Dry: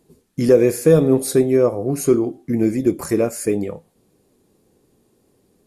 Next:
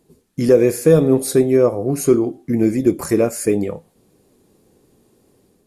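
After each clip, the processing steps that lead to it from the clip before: AGC gain up to 4 dB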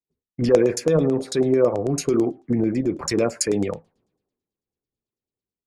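limiter -11.5 dBFS, peak gain reduction 9.5 dB; LFO low-pass saw down 9.1 Hz 620–7400 Hz; three-band expander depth 100%; gain -1 dB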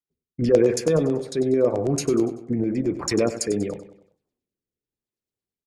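rotary speaker horn 0.9 Hz; on a send: feedback echo 96 ms, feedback 44%, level -12.5 dB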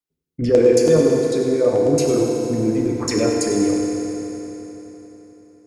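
FDN reverb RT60 3.8 s, high-frequency decay 0.85×, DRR -0.5 dB; gain +1 dB

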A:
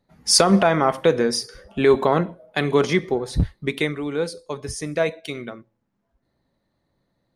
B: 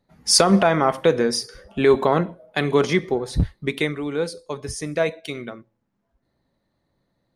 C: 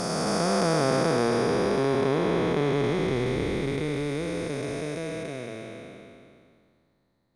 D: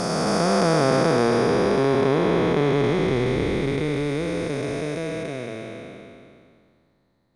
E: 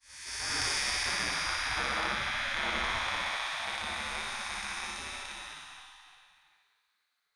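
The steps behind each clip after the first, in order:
nothing audible
time blur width 1.24 s; gain +2.5 dB
high shelf 7800 Hz -6.5 dB; gain +4.5 dB
opening faded in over 0.69 s; spectral gate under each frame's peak -20 dB weak; flutter echo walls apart 10.2 m, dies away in 0.64 s

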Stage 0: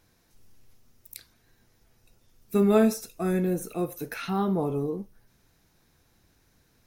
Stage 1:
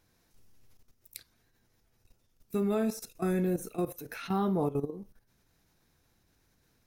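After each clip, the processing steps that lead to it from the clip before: level quantiser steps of 14 dB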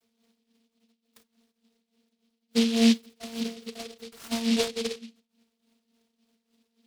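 vocoder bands 32, saw 229 Hz; tremolo 3.5 Hz, depth 71%; noise-modulated delay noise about 3500 Hz, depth 0.19 ms; gain +8 dB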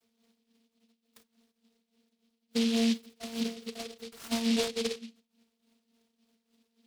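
limiter -20 dBFS, peak gain reduction 8 dB; gain -1 dB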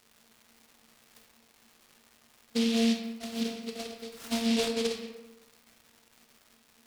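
crackle 390/s -46 dBFS; on a send at -3.5 dB: reverb RT60 1.1 s, pre-delay 17 ms

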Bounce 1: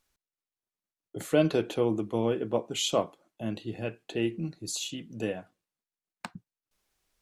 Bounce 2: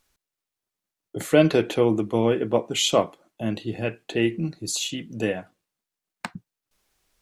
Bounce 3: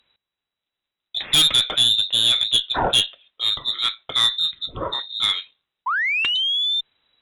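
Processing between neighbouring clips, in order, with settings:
dynamic EQ 2000 Hz, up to +6 dB, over -54 dBFS, Q 3; gain +6.5 dB
painted sound fall, 5.86–6.81, 290–3000 Hz -26 dBFS; inverted band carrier 3900 Hz; added harmonics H 2 -9 dB, 5 -9 dB, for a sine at -4 dBFS; gain -4 dB

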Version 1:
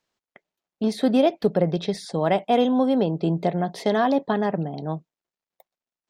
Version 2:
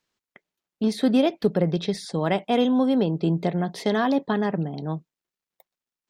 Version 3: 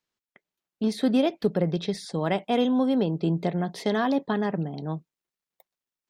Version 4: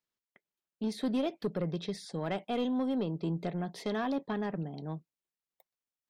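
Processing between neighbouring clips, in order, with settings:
bell 670 Hz -6 dB 0.91 oct; gain +1 dB
AGC gain up to 5 dB; gain -7 dB
soft clip -16.5 dBFS, distortion -18 dB; gain -7 dB

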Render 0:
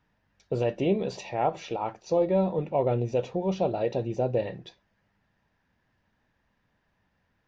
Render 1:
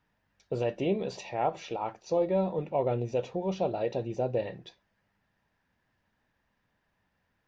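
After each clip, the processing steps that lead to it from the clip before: low shelf 350 Hz -3 dB; gain -2 dB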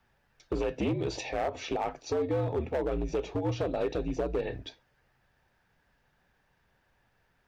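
compressor 8:1, threshold -30 dBFS, peak gain reduction 8.5 dB; frequency shift -70 Hz; hard clip -29.5 dBFS, distortion -14 dB; gain +5.5 dB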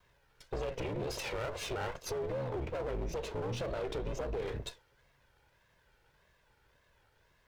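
minimum comb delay 2 ms; wow and flutter 140 cents; limiter -32.5 dBFS, peak gain reduction 11 dB; gain +3 dB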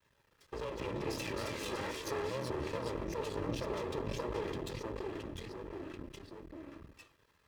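echoes that change speed 0.128 s, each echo -2 st, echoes 3; half-wave rectifier; notch comb 730 Hz; gain +2 dB

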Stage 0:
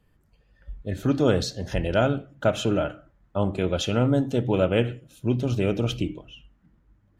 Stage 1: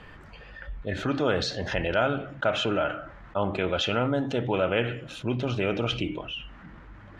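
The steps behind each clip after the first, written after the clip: Bessel low-pass 1900 Hz, order 2; tilt shelf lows -9 dB, about 660 Hz; fast leveller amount 50%; gain -3.5 dB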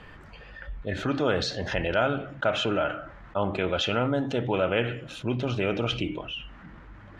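nothing audible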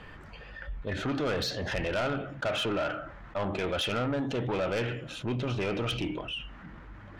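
soft clip -25 dBFS, distortion -9 dB

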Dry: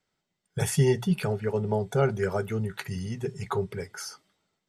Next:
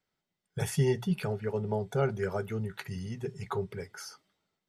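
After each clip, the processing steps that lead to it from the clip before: bell 8200 Hz -4 dB 0.75 oct; gain -4.5 dB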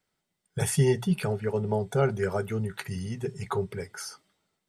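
bell 8800 Hz +8 dB 0.38 oct; gain +4 dB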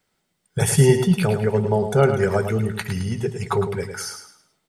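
feedback echo 0.107 s, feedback 33%, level -8 dB; gain +7.5 dB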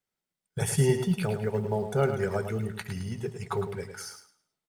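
G.711 law mismatch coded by A; gain -8.5 dB

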